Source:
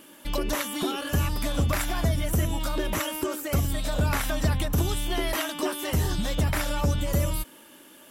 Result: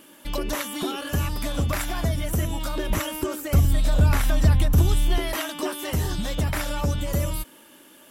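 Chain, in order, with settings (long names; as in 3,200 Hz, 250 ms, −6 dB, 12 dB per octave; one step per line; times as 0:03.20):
0:02.90–0:05.18: low-shelf EQ 140 Hz +10.5 dB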